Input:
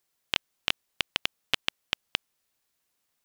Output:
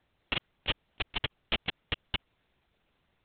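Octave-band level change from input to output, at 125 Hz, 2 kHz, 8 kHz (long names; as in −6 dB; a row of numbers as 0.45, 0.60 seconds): +8.5 dB, −3.0 dB, below −35 dB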